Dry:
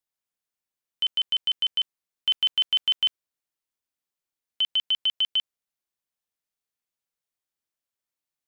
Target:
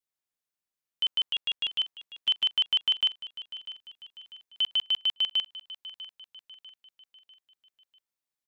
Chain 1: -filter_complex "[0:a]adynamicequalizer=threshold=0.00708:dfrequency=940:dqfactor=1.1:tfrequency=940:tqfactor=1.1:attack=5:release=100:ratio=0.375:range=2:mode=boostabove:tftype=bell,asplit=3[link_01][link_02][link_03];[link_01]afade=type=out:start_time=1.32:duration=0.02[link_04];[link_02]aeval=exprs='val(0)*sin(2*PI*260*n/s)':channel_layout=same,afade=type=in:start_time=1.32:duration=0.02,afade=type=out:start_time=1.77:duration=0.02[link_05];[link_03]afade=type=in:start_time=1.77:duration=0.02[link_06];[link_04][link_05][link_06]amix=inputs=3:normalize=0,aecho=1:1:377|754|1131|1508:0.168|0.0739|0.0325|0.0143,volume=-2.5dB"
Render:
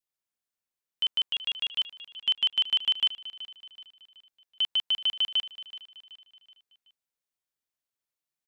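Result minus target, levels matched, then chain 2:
echo 269 ms early
-filter_complex "[0:a]adynamicequalizer=threshold=0.00708:dfrequency=940:dqfactor=1.1:tfrequency=940:tqfactor=1.1:attack=5:release=100:ratio=0.375:range=2:mode=boostabove:tftype=bell,asplit=3[link_01][link_02][link_03];[link_01]afade=type=out:start_time=1.32:duration=0.02[link_04];[link_02]aeval=exprs='val(0)*sin(2*PI*260*n/s)':channel_layout=same,afade=type=in:start_time=1.32:duration=0.02,afade=type=out:start_time=1.77:duration=0.02[link_05];[link_03]afade=type=in:start_time=1.77:duration=0.02[link_06];[link_04][link_05][link_06]amix=inputs=3:normalize=0,aecho=1:1:646|1292|1938|2584:0.168|0.0739|0.0325|0.0143,volume=-2.5dB"

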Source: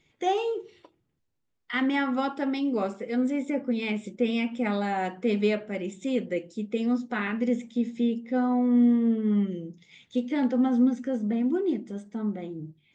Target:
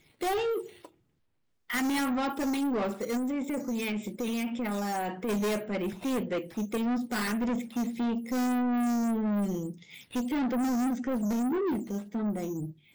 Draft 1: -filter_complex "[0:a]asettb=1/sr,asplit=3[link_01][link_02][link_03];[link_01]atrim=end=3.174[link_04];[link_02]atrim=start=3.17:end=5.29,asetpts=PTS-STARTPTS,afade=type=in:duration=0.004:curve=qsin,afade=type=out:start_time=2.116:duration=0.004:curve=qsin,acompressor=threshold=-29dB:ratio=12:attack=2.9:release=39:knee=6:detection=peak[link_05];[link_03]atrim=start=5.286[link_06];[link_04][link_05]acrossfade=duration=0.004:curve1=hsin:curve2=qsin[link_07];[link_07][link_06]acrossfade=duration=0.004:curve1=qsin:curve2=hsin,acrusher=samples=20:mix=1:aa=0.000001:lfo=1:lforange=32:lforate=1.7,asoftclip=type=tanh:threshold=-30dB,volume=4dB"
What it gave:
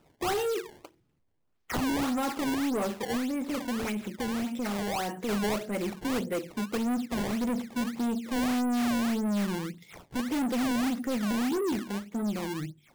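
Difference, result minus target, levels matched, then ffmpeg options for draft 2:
sample-and-hold swept by an LFO: distortion +12 dB
-filter_complex "[0:a]asettb=1/sr,asplit=3[link_01][link_02][link_03];[link_01]atrim=end=3.174[link_04];[link_02]atrim=start=3.17:end=5.29,asetpts=PTS-STARTPTS,afade=type=in:duration=0.004:curve=qsin,afade=type=out:start_time=2.116:duration=0.004:curve=qsin,acompressor=threshold=-29dB:ratio=12:attack=2.9:release=39:knee=6:detection=peak[link_05];[link_03]atrim=start=5.286[link_06];[link_04][link_05]acrossfade=duration=0.004:curve1=hsin:curve2=qsin[link_07];[link_07][link_06]acrossfade=duration=0.004:curve1=qsin:curve2=hsin,acrusher=samples=4:mix=1:aa=0.000001:lfo=1:lforange=6.4:lforate=1.7,asoftclip=type=tanh:threshold=-30dB,volume=4dB"

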